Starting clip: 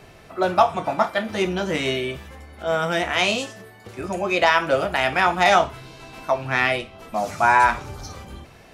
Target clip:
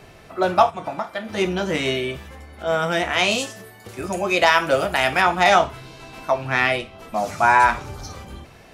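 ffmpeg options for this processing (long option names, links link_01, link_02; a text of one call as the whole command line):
ffmpeg -i in.wav -filter_complex "[0:a]asplit=3[link_01][link_02][link_03];[link_01]afade=type=out:start_time=0.69:duration=0.02[link_04];[link_02]acompressor=threshold=-26dB:ratio=4,afade=type=in:start_time=0.69:duration=0.02,afade=type=out:start_time=1.36:duration=0.02[link_05];[link_03]afade=type=in:start_time=1.36:duration=0.02[link_06];[link_04][link_05][link_06]amix=inputs=3:normalize=0,asettb=1/sr,asplit=3[link_07][link_08][link_09];[link_07]atrim=end=3.314[link_10];[link_08]atrim=start=3.31:end=5.22,asetpts=PTS-STARTPTS,afade=type=in:duration=0.004:curve=qsin,afade=type=out:start_time=1.906:duration=0.004:curve=qsin,highshelf=frequency=6500:gain=9.5[link_11];[link_09]atrim=start=5.216[link_12];[link_10][link_11]acrossfade=duration=0.004:curve1=hsin:curve2=qsin[link_13];[link_13][link_12]acrossfade=duration=0.004:curve1=qsin:curve2=hsin,volume=1dB" out.wav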